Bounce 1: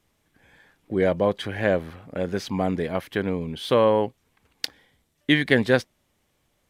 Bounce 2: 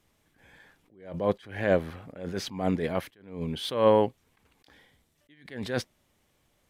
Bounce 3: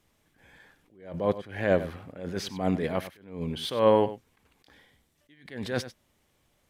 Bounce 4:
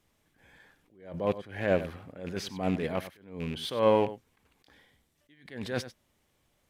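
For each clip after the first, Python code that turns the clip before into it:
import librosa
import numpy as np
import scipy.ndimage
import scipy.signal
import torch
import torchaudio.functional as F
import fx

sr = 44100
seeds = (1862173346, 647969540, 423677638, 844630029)

y1 = fx.attack_slew(x, sr, db_per_s=110.0)
y2 = y1 + 10.0 ** (-14.0 / 20.0) * np.pad(y1, (int(96 * sr / 1000.0), 0))[:len(y1)]
y3 = fx.rattle_buzz(y2, sr, strikes_db=-30.0, level_db=-29.0)
y3 = y3 * 10.0 ** (-2.5 / 20.0)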